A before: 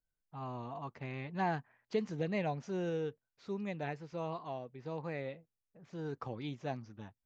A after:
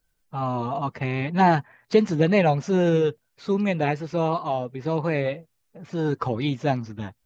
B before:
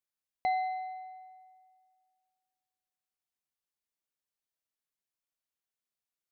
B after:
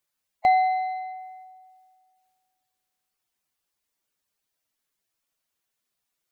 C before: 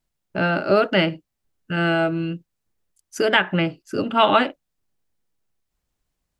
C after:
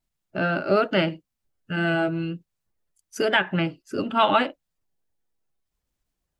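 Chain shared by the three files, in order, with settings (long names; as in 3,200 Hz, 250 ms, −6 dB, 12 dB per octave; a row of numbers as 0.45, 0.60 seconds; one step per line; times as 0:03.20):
spectral magnitudes quantised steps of 15 dB
loudness normalisation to −24 LKFS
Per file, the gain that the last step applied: +16.5, +11.0, −3.0 decibels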